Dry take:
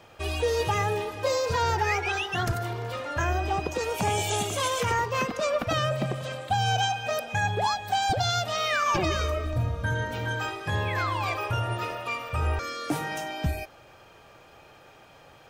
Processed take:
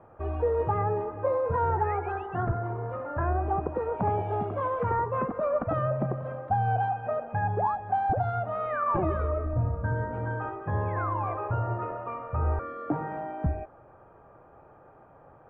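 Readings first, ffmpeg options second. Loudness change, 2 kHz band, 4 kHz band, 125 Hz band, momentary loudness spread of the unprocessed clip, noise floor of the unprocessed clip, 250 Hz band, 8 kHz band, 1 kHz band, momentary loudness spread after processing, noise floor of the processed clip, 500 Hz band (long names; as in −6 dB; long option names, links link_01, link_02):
−2.0 dB, −10.0 dB, below −30 dB, 0.0 dB, 6 LU, −53 dBFS, 0.0 dB, below −40 dB, −0.5 dB, 6 LU, −54 dBFS, 0.0 dB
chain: -af "lowpass=frequency=1300:width=0.5412,lowpass=frequency=1300:width=1.3066"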